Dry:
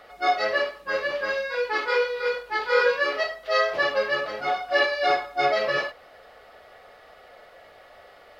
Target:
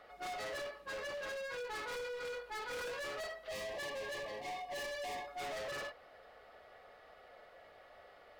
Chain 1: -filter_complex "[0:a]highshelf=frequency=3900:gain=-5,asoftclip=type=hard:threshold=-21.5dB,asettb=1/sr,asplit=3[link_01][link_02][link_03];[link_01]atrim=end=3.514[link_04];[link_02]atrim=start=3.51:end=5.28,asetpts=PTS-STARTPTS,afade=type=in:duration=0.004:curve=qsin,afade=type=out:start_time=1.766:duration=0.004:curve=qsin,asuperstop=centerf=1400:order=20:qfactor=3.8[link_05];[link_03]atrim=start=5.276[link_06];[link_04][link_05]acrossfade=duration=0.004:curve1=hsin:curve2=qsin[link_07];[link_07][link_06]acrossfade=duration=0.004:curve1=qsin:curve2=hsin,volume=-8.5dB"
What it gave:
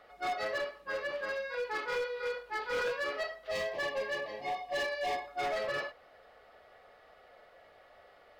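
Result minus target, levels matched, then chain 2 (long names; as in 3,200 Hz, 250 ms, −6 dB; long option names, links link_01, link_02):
hard clipping: distortion −7 dB
-filter_complex "[0:a]highshelf=frequency=3900:gain=-5,asoftclip=type=hard:threshold=-32dB,asettb=1/sr,asplit=3[link_01][link_02][link_03];[link_01]atrim=end=3.514[link_04];[link_02]atrim=start=3.51:end=5.28,asetpts=PTS-STARTPTS,afade=type=in:duration=0.004:curve=qsin,afade=type=out:start_time=1.766:duration=0.004:curve=qsin,asuperstop=centerf=1400:order=20:qfactor=3.8[link_05];[link_03]atrim=start=5.276[link_06];[link_04][link_05]acrossfade=duration=0.004:curve1=hsin:curve2=qsin[link_07];[link_07][link_06]acrossfade=duration=0.004:curve1=qsin:curve2=hsin,volume=-8.5dB"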